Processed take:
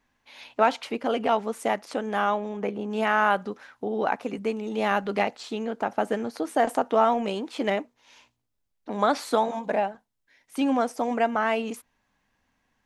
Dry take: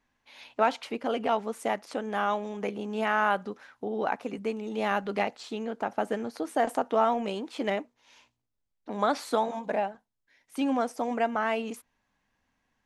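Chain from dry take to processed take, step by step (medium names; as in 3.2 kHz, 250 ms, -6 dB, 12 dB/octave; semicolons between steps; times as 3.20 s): 2.29–2.90 s: treble shelf 3.7 kHz -> 2.4 kHz -10 dB; trim +3.5 dB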